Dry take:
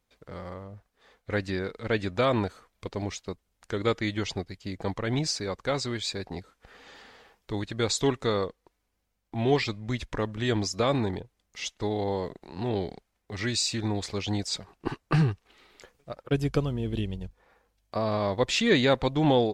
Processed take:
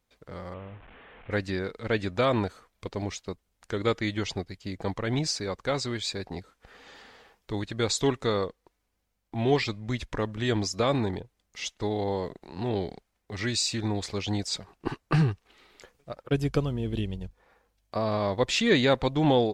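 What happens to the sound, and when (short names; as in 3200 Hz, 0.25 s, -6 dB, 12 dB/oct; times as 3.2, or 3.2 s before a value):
0.54–1.31 delta modulation 16 kbps, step -44.5 dBFS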